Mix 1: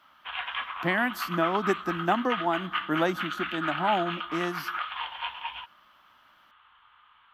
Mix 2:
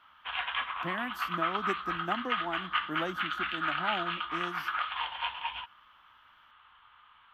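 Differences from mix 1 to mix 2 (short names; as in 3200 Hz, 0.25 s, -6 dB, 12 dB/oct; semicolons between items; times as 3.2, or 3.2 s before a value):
speech -10.0 dB; master: add low shelf 180 Hz +3 dB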